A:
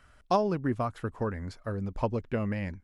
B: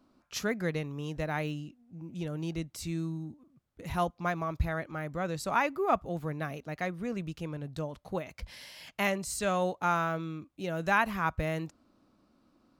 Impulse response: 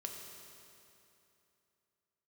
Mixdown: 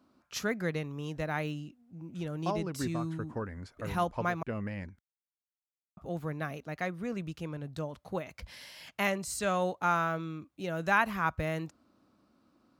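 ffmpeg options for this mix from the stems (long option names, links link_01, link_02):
-filter_complex "[0:a]adelay=2150,volume=-5.5dB[link_01];[1:a]volume=-1dB,asplit=3[link_02][link_03][link_04];[link_02]atrim=end=4.43,asetpts=PTS-STARTPTS,afade=type=out:start_time=4.426:duration=0.004:curve=hsin[link_05];[link_03]atrim=start=4.43:end=5.97,asetpts=PTS-STARTPTS,volume=0[link_06];[link_04]atrim=start=5.97,asetpts=PTS-STARTPTS,afade=type=in:duration=0.004:curve=hsin[link_07];[link_05][link_06][link_07]concat=n=3:v=0:a=1,asplit=2[link_08][link_09];[link_09]apad=whole_len=219861[link_10];[link_01][link_10]sidechaincompress=threshold=-33dB:ratio=8:attack=6.6:release=239[link_11];[link_11][link_08]amix=inputs=2:normalize=0,highpass=55,equalizer=frequency=1400:width_type=o:width=0.77:gain=2"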